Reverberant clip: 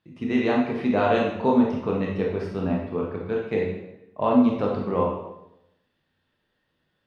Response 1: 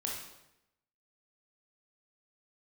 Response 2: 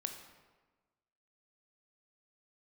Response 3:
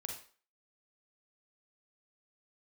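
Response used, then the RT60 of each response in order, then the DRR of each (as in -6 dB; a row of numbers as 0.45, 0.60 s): 1; 0.85, 1.3, 0.40 s; -2.5, 5.0, 1.5 dB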